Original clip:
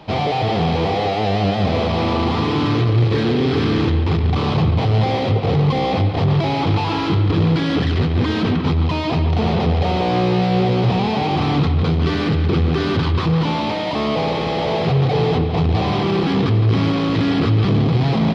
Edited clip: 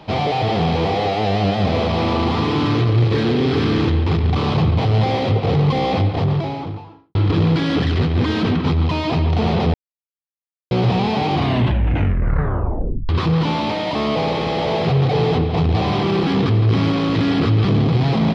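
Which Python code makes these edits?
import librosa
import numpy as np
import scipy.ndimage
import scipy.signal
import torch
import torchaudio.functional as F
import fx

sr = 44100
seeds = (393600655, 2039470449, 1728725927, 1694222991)

y = fx.studio_fade_out(x, sr, start_s=5.95, length_s=1.2)
y = fx.edit(y, sr, fx.silence(start_s=9.74, length_s=0.97),
    fx.tape_stop(start_s=11.33, length_s=1.76), tone=tone)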